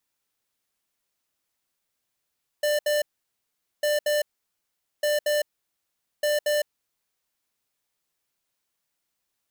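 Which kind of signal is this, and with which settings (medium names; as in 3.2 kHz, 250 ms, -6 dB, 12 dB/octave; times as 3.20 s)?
beep pattern square 594 Hz, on 0.16 s, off 0.07 s, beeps 2, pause 0.81 s, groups 4, -23 dBFS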